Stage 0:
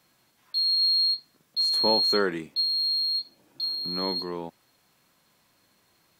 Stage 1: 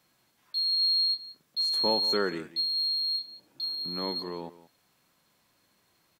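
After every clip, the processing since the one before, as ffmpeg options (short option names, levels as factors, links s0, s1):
-af "aecho=1:1:179:0.15,volume=0.668"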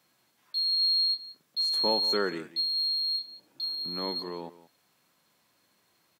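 -af "highpass=f=140:p=1"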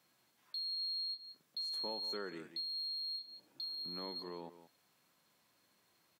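-af "acompressor=threshold=0.0112:ratio=2.5,volume=0.596"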